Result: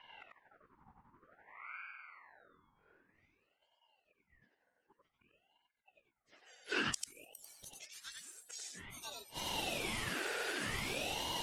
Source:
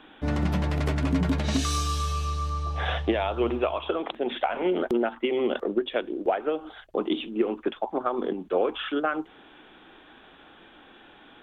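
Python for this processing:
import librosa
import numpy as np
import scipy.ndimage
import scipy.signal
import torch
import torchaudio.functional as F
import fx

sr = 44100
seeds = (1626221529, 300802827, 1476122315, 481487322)

y = fx.octave_mirror(x, sr, pivot_hz=1800.0)
y = fx.peak_eq(y, sr, hz=1100.0, db=5.5, octaves=0.28, at=(1.66, 2.09))
y = fx.level_steps(y, sr, step_db=20, at=(6.82, 7.54))
y = fx.gate_flip(y, sr, shuts_db=-34.0, range_db=-32)
y = fx.filter_sweep_lowpass(y, sr, from_hz=380.0, to_hz=9100.0, start_s=6.05, end_s=6.82, q=0.76)
y = y + 10.0 ** (-3.0 / 20.0) * np.pad(y, (int(93 * sr / 1000.0), 0))[:len(y)]
y = fx.ring_lfo(y, sr, carrier_hz=1200.0, swing_pct=60, hz=0.53)
y = F.gain(torch.from_numpy(y), 17.5).numpy()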